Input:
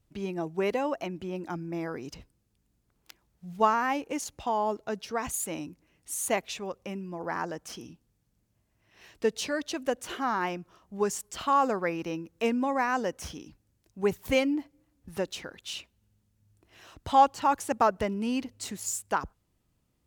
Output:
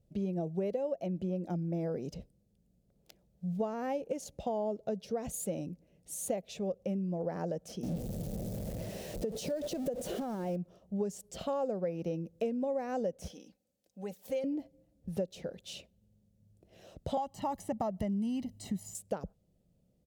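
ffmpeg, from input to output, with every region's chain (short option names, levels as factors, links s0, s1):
-filter_complex "[0:a]asettb=1/sr,asplit=3[s0][s1][s2];[s0]atrim=end=7.834[s3];[s1]atrim=start=7.83:end=10.56,asetpts=PTS-STARTPTS,afade=t=in:d=0.004:c=qsin,afade=t=out:st=2.726:d=0.004:c=qsin,aeval=exprs='val(0)+0.5*0.0224*sgn(val(0))':c=same,equalizer=f=2800:w=0.56:g=-4,acompressor=threshold=0.0282:ratio=6:attack=3.2:release=140:knee=1:detection=peak[s4];[s2]atrim=start=10.556[s5];[s3][s4]acrossfade=d=0.004:c1=hsin:c2=qsin[s6];[s6][s5]acrossfade=d=0.004:c1=qsin:c2=hsin,asettb=1/sr,asplit=3[s7][s8][s9];[s7]atrim=end=13.284[s10];[s8]atrim=start=13.28:end=14.44,asetpts=PTS-STARTPTS,afade=t=in:d=0.004:c=qsin,afade=t=out:st=1.156:d=0.004:c=qsin,highpass=f=880:p=1,acompressor=threshold=0.00501:ratio=1.5:attack=3.2:release=140:knee=1:detection=peak,aecho=1:1:3.9:0.56,atrim=end_sample=51156[s11];[s9]atrim=start=14.436[s12];[s10][s11]acrossfade=d=0.004:c1=hsin:c2=qsin[s13];[s13][s12]acrossfade=d=0.004:c1=qsin:c2=hsin,asettb=1/sr,asplit=3[s14][s15][s16];[s14]atrim=end=17.174[s17];[s15]atrim=start=17.17:end=18.95,asetpts=PTS-STARTPTS,afade=t=in:d=0.004:c=qsin,afade=t=out:st=1.776:d=0.004:c=qsin,highshelf=f=8400:g=8,aecho=1:1:1:0.79,atrim=end_sample=78498,acrossover=split=720|2900[s18][s19][s20];[s18]acompressor=threshold=0.0501:ratio=4[s21];[s19]acompressor=threshold=0.112:ratio=4[s22];[s20]acompressor=threshold=0.00631:ratio=4[s23];[s21][s22][s23]amix=inputs=3:normalize=0[s24];[s16]atrim=start=18.946[s25];[s17][s24]acrossfade=d=0.004:c1=hsin:c2=qsin[s26];[s26][s25]acrossfade=d=0.004:c1=qsin:c2=hsin,firequalizer=gain_entry='entry(110,0);entry(180,9);entry(290,-3);entry(550,9);entry(1000,-15);entry(3600,-7)':delay=0.05:min_phase=1,acompressor=threshold=0.0282:ratio=6"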